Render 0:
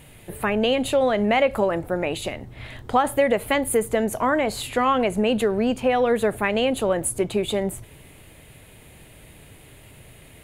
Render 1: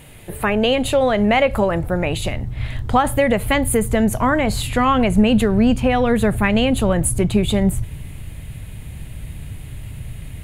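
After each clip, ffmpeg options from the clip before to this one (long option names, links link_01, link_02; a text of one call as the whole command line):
ffmpeg -i in.wav -af "asubboost=boost=6.5:cutoff=160,volume=4.5dB" out.wav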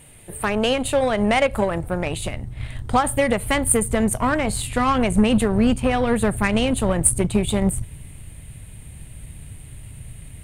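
ffmpeg -i in.wav -af "aeval=exprs='0.668*(cos(1*acos(clip(val(0)/0.668,-1,1)))-cos(1*PI/2))+0.0376*(cos(7*acos(clip(val(0)/0.668,-1,1)))-cos(7*PI/2))':channel_layout=same,equalizer=frequency=8800:width_type=o:width=0.24:gain=15,volume=-2.5dB" out.wav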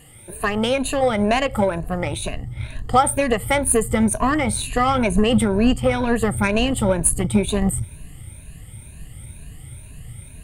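ffmpeg -i in.wav -af "afftfilt=real='re*pow(10,13/40*sin(2*PI*(1.5*log(max(b,1)*sr/1024/100)/log(2)-(2.1)*(pts-256)/sr)))':imag='im*pow(10,13/40*sin(2*PI*(1.5*log(max(b,1)*sr/1024/100)/log(2)-(2.1)*(pts-256)/sr)))':win_size=1024:overlap=0.75,volume=-1dB" out.wav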